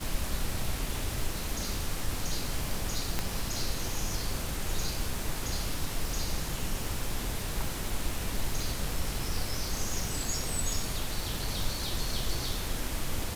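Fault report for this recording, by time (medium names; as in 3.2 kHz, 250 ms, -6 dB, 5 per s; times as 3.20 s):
crackle 590 per s -35 dBFS
3.19 s: pop -14 dBFS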